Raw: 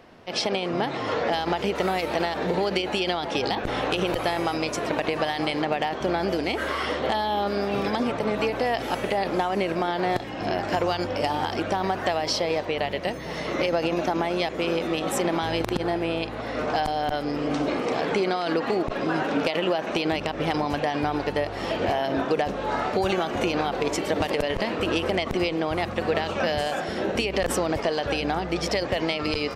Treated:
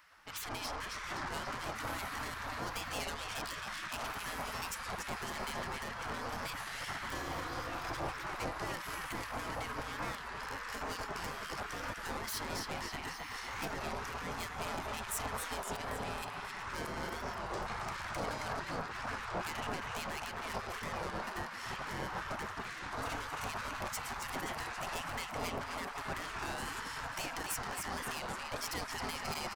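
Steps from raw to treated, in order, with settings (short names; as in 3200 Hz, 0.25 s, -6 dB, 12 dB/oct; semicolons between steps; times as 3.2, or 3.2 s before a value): on a send: feedback echo 0.268 s, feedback 55%, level -7.5 dB; on the sum: soft clip -27 dBFS, distortion -8 dB; bell 3200 Hz -12 dB 2 oct; spectral gate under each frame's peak -15 dB weak; record warp 33 1/3 rpm, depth 160 cents; gain +3 dB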